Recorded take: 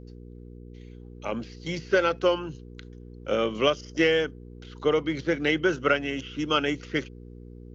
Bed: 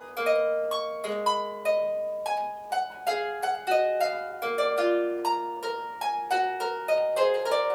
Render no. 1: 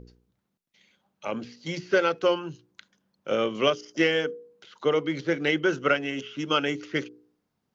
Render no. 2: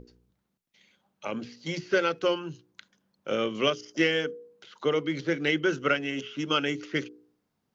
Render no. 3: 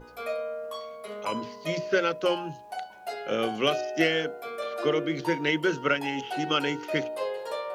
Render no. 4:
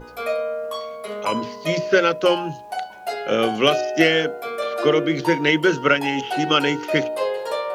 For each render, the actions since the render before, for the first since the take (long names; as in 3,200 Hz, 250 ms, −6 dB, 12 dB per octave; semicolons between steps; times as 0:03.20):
hum removal 60 Hz, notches 8
mains-hum notches 60/120/180 Hz; dynamic equaliser 760 Hz, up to −5 dB, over −35 dBFS, Q 0.91
mix in bed −8 dB
level +8 dB; brickwall limiter −3 dBFS, peak gain reduction 1 dB